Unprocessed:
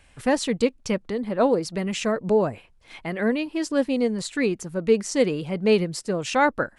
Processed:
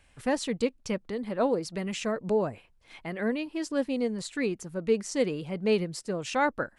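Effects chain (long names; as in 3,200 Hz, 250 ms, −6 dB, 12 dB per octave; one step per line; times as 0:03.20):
0:01.13–0:02.47: one half of a high-frequency compander encoder only
level −6 dB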